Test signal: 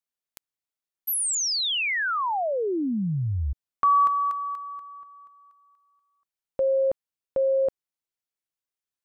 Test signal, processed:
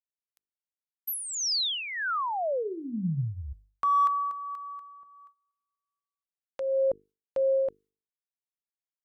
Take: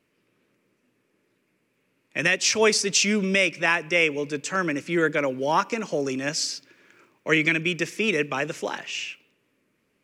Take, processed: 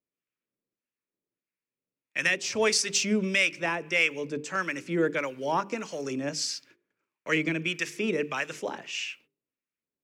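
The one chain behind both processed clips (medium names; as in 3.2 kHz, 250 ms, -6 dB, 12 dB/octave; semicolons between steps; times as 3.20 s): gate -51 dBFS, range -21 dB; hum notches 50/100/150/200/250/300/350/400/450 Hz; in parallel at -11.5 dB: hard clipper -16.5 dBFS; on the sum: harmonic tremolo 1.6 Hz, depth 70%, crossover 910 Hz; trim -3 dB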